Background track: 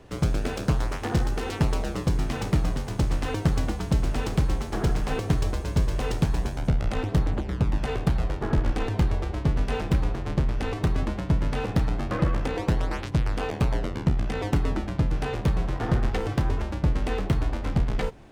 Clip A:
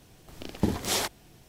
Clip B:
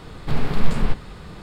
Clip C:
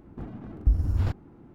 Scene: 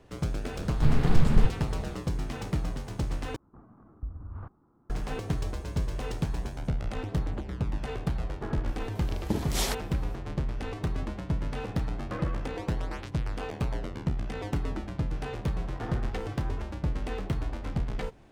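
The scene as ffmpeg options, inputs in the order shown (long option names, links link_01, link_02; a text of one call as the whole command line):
ffmpeg -i bed.wav -i cue0.wav -i cue1.wav -i cue2.wav -filter_complex "[0:a]volume=-6.5dB[link_01];[2:a]equalizer=frequency=65:width=0.31:gain=11.5[link_02];[3:a]lowpass=frequency=1200:width_type=q:width=3.9[link_03];[link_01]asplit=2[link_04][link_05];[link_04]atrim=end=3.364[link_06];[link_03]atrim=end=1.54,asetpts=PTS-STARTPTS,volume=-15.5dB[link_07];[link_05]atrim=start=4.896[link_08];[link_02]atrim=end=1.42,asetpts=PTS-STARTPTS,volume=-6.5dB,afade=type=in:duration=0.004:curve=hsin,afade=type=out:start_time=1.416:duration=0.004:curve=hsin,adelay=540[link_09];[1:a]atrim=end=1.48,asetpts=PTS-STARTPTS,volume=-3dB,afade=type=in:duration=0.004:curve=hsin,afade=type=out:start_time=1.476:duration=0.004:curve=hsin,adelay=8670[link_10];[link_06][link_07]acrossfade=duration=0.004:curve1=hsin:curve2=hsin[link_11];[link_11][link_08]acrossfade=duration=0.004:curve1=hsin:curve2=hsin[link_12];[link_12][link_09][link_10]amix=inputs=3:normalize=0" out.wav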